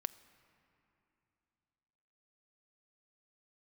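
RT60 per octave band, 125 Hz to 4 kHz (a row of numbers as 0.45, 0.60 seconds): 3.3, 3.2, 3.0, 3.0, 2.8, 2.5 seconds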